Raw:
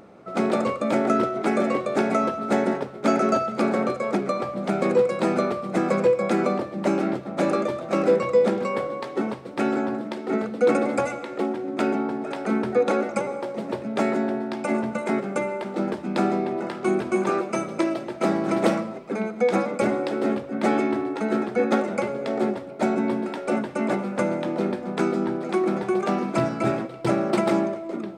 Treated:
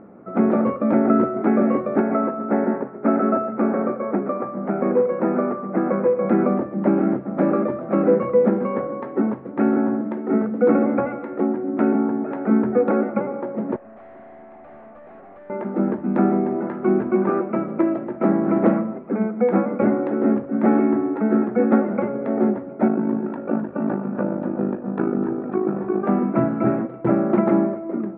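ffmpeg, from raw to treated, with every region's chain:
-filter_complex "[0:a]asettb=1/sr,asplit=3[a][b][c];[a]atrim=end=2.004[d];[b]atrim=start=2:end=6.25,asetpts=PTS-STARTPTS,afade=t=in:d=0.004:c=qsin,afade=t=out:st=4.246:d=0.004:c=qsin,highpass=f=270:p=1,equalizer=f=3.5k:w=2.5:g=-13,aecho=1:1:125:0.211,atrim=end_sample=187425[e];[c]atrim=start=6.246[f];[d][e]acrossfade=d=0.004:c1=hsin:c2=qsin[g];[g][f]acrossfade=d=0.004:c1=qsin:c2=hsin,asettb=1/sr,asplit=3[h][i][j];[h]atrim=end=13.764[k];[i]atrim=start=13.76:end=15.5,asetpts=PTS-STARTPTS,afade=t=in:d=0.004:c=qsin,afade=t=out:st=1.736:d=0.004:c=qsin,asplit=3[l][m][n];[l]bandpass=f=730:t=q:w=8,volume=0dB[o];[m]bandpass=f=1.09k:t=q:w=8,volume=-6dB[p];[n]bandpass=f=2.44k:t=q:w=8,volume=-9dB[q];[o][p][q]amix=inputs=3:normalize=0,acontrast=86,aeval=exprs='(tanh(141*val(0)+0.3)-tanh(0.3))/141':c=same[r];[j]atrim=start=15.496[s];[k][r]acrossfade=d=0.004:c1=hsin:c2=qsin[t];[t][s]acrossfade=d=0.004:c1=qsin:c2=hsin,asettb=1/sr,asplit=3[u][v][w];[u]atrim=end=22.884[x];[v]atrim=start=22.88:end=26.04,asetpts=PTS-STARTPTS,afade=t=in:d=0.004:c=qsin,afade=t=out:st=3.156:d=0.004:c=qsin,tremolo=f=52:d=0.75,asuperstop=centerf=2100:order=4:qfactor=7.2,aecho=1:1:259:0.237,atrim=end_sample=139356[y];[w]atrim=start=26.036[z];[x][y]acrossfade=d=0.004:c1=hsin:c2=qsin[aa];[aa][z]acrossfade=d=0.004:c1=qsin:c2=hsin,lowpass=f=1.8k:w=0.5412,lowpass=f=1.8k:w=1.3066,equalizer=f=240:w=1.3:g=8"

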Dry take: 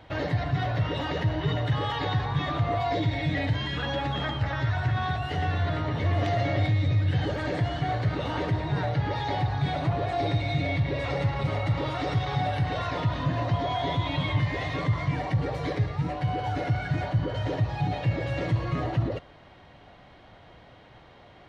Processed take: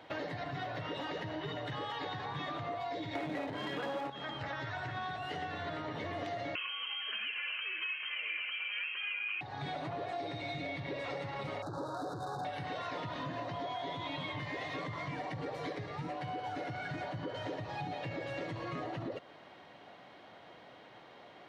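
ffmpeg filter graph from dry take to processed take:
-filter_complex "[0:a]asettb=1/sr,asplit=3[a][b][c];[a]atrim=end=3.154[d];[b]atrim=start=3.15:end=4.1,asetpts=PTS-STARTPTS,afade=t=in:d=0.004:c=qsin,afade=t=out:st=0.946:d=0.004:c=qsin,equalizer=f=480:w=0.3:g=15,aeval=exprs='clip(val(0),-1,0.0841)':c=same[e];[c]atrim=start=4.096[f];[d][e]acrossfade=d=0.004:c1=hsin:c2=qsin[g];[g][f]acrossfade=d=0.004:c1=qsin:c2=hsin,asettb=1/sr,asplit=3[h][i][j];[h]atrim=end=6.554[k];[i]atrim=start=6.55:end=9.41,asetpts=PTS-STARTPTS,afade=t=in:d=0.004:c=qsin,afade=t=out:st=2.856:d=0.004:c=qsin,highpass=190,equalizer=f=1k:w=1.5:g=12.5,lowpass=f=2.8k:t=q:w=0.5098,lowpass=f=2.8k:t=q:w=0.6013,lowpass=f=2.8k:t=q:w=0.9,lowpass=f=2.8k:t=q:w=2.563,afreqshift=-3300[l];[j]atrim=start=9.406[m];[k][l]acrossfade=d=0.004:c1=hsin:c2=qsin[n];[n][m]acrossfade=d=0.004:c1=qsin:c2=hsin,asettb=1/sr,asplit=3[o][p][q];[o]atrim=end=11.624[r];[p]atrim=start=11.62:end=12.45,asetpts=PTS-STARTPTS,afade=t=in:d=0.004:c=qsin,afade=t=out:st=0.826:d=0.004:c=qsin,asoftclip=type=hard:threshold=-24.5dB,adynamicsmooth=sensitivity=7.5:basefreq=1.3k,asuperstop=centerf=2500:order=20:qfactor=1.2[s];[q]atrim=start=12.446[t];[r][s]acrossfade=d=0.004:c1=hsin:c2=qsin[u];[u][t]acrossfade=d=0.004:c1=qsin:c2=hsin,highpass=230,acompressor=threshold=-35dB:ratio=6,volume=-1.5dB"

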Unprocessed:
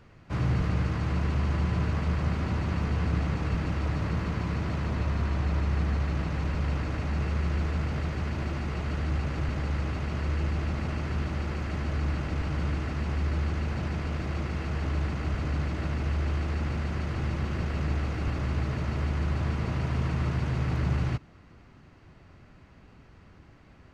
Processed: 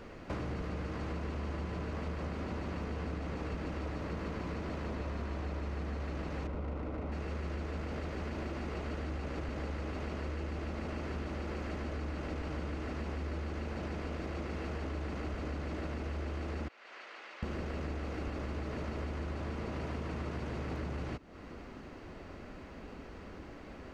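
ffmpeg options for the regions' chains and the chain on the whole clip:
-filter_complex "[0:a]asettb=1/sr,asplit=3[a][b][c];[a]atrim=end=6.474[d];[b]atrim=start=6.47:end=7.12,asetpts=PTS-STARTPTS,afade=t=in:d=0.004:c=qsin,afade=t=out:st=0.646:d=0.004:c=qsin,highshelf=f=3.1k:g=-5.5,bandreject=f=1.7k:w=7,adynamicsmooth=sensitivity=6.5:basefreq=1.3k[e];[c]atrim=start=7.116[f];[d][e]acrossfade=d=0.004:c1=hsin:c2=qsin[g];[g][f]acrossfade=d=0.004:c1=qsin:c2=hsin,asettb=1/sr,asplit=3[h][i][j];[h]atrim=end=16.684[k];[i]atrim=start=16.68:end=17.43,asetpts=PTS-STARTPTS,afade=t=in:d=0.004:c=qsin,afade=t=out:st=0.746:d=0.004:c=qsin,highpass=460,lowpass=2.6k,aderivative[l];[j]atrim=start=17.426[m];[k][l]acrossfade=d=0.004:c1=hsin:c2=qsin[n];[n][m]acrossfade=d=0.004:c1=qsin:c2=hsin,equalizer=f=125:t=o:w=1:g=-10,equalizer=f=250:t=o:w=1:g=4,equalizer=f=500:t=o:w=1:g=6,acompressor=threshold=-43dB:ratio=5,volume=6dB"

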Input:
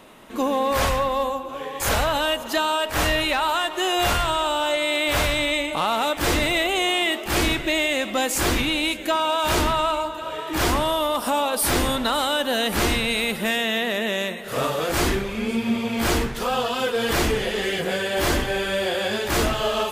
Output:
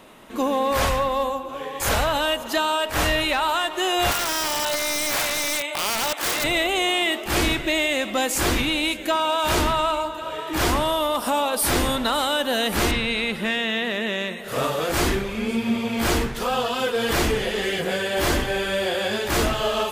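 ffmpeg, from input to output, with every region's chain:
-filter_complex "[0:a]asettb=1/sr,asplit=3[a][b][c];[a]atrim=end=4.114[d];[b]atrim=start=4.11:end=6.44,asetpts=PTS-STARTPTS,afade=t=in:d=0.004:c=qsin,afade=t=out:st=2.326:d=0.004:c=qsin,highpass=550,aeval=exprs='(mod(6.68*val(0)+1,2)-1)/6.68':c=same[e];[c]atrim=start=6.436[f];[d][e]acrossfade=d=0.004:c1=hsin:c2=qsin[g];[g][f]acrossfade=d=0.004:c1=qsin:c2=hsin,asettb=1/sr,asplit=3[h][i][j];[h]atrim=end=12.914[k];[i]atrim=start=12.91:end=14.4,asetpts=PTS-STARTPTS,afade=t=in:d=0.004:c=qsin,afade=t=out:st=1.486:d=0.004:c=qsin,lowpass=12k,equalizer=f=670:t=o:w=0.79:g=-4,acrossover=split=4900[l][m];[m]acompressor=threshold=-47dB:ratio=4:attack=1:release=60[n];[l][n]amix=inputs=2:normalize=0[o];[j]atrim=start=14.396[p];[k][o]acrossfade=d=0.004:c1=hsin:c2=qsin[q];[q][p]acrossfade=d=0.004:c1=qsin:c2=hsin"

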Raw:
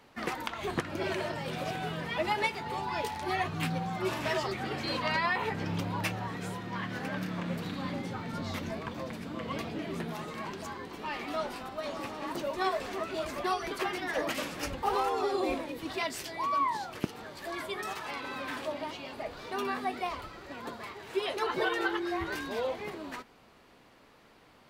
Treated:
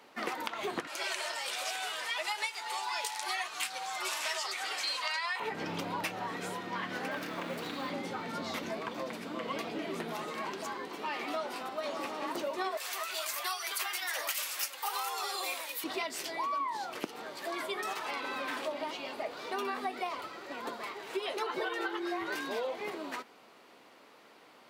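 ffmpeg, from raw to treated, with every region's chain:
-filter_complex "[0:a]asettb=1/sr,asplit=3[a][b][c];[a]atrim=end=0.874[d];[b]atrim=start=0.87:end=5.4,asetpts=PTS-STARTPTS,afade=t=in:d=0.004:c=qsin,afade=t=out:st=4.526:d=0.004:c=qsin,highpass=880,equalizer=f=8.1k:w=0.58:g=12.5,aeval=exprs='val(0)+0.000447*(sin(2*PI*60*n/s)+sin(2*PI*2*60*n/s)/2+sin(2*PI*3*60*n/s)/3+sin(2*PI*4*60*n/s)/4+sin(2*PI*5*60*n/s)/5)':c=same[e];[c]atrim=start=5.396[f];[d][e]acrossfade=d=0.004:c1=hsin:c2=qsin[g];[g][f]acrossfade=d=0.004:c1=qsin:c2=hsin,asettb=1/sr,asplit=3[h][i][j];[h]atrim=end=7.114[k];[i]atrim=start=7.11:end=7.9,asetpts=PTS-STARTPTS,afade=t=in:d=0.004:c=qsin,afade=t=out:st=0.786:d=0.004:c=qsin,equalizer=f=190:w=5.9:g=-9.5,acrusher=bits=7:mode=log:mix=0:aa=0.000001[l];[j]atrim=start=7.896[m];[k][l]acrossfade=d=0.004:c1=hsin:c2=qsin[n];[n][m]acrossfade=d=0.004:c1=qsin:c2=hsin,asettb=1/sr,asplit=3[o][p][q];[o]atrim=end=12.774[r];[p]atrim=start=12.77:end=15.84,asetpts=PTS-STARTPTS,afade=t=in:d=0.004:c=qsin,afade=t=out:st=3.066:d=0.004:c=qsin,highpass=980,aemphasis=mode=production:type=75fm[s];[q]atrim=start=15.836[t];[r][s]acrossfade=d=0.004:c1=hsin:c2=qsin[u];[u][t]acrossfade=d=0.004:c1=qsin:c2=hsin,highpass=290,bandreject=f=1.7k:w=28,acompressor=threshold=-34dB:ratio=6,volume=2.5dB"

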